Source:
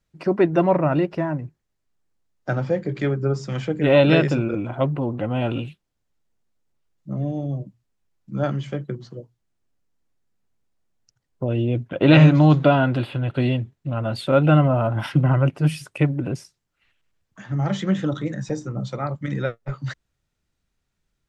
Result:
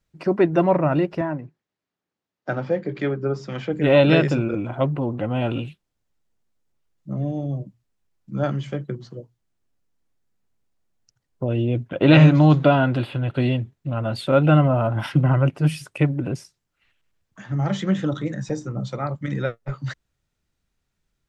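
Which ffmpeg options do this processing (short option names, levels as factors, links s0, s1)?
-filter_complex "[0:a]asettb=1/sr,asplit=3[s0][s1][s2];[s0]atrim=end=1.214[s3];[s1]atrim=start=1.21:end=3.73,asetpts=PTS-STARTPTS,afade=t=in:d=0.004:c=qsin,afade=t=out:st=2.516:d=0.004:c=qsin,highpass=170,lowpass=4700[s4];[s2]atrim=start=3.726[s5];[s3][s4]acrossfade=d=0.004:c1=hsin:c2=qsin[s6];[s6][s5]acrossfade=d=0.004:c1=qsin:c2=hsin"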